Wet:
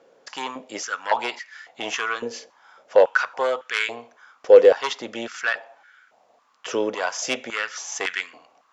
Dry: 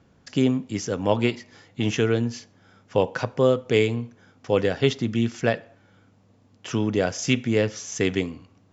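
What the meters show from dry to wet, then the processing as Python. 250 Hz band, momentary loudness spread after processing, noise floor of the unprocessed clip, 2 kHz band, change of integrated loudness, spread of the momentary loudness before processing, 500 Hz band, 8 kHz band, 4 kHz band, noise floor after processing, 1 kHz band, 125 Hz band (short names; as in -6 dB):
-12.5 dB, 18 LU, -59 dBFS, +6.0 dB, +1.5 dB, 10 LU, +3.5 dB, n/a, +1.0 dB, -62 dBFS, +6.0 dB, under -25 dB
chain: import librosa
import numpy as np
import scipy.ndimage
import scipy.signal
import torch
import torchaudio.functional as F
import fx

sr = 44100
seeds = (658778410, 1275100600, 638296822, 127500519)

y = fx.fold_sine(x, sr, drive_db=5, ceiling_db=-5.0)
y = fx.filter_held_highpass(y, sr, hz=3.6, low_hz=500.0, high_hz=1600.0)
y = y * librosa.db_to_amplitude(-7.0)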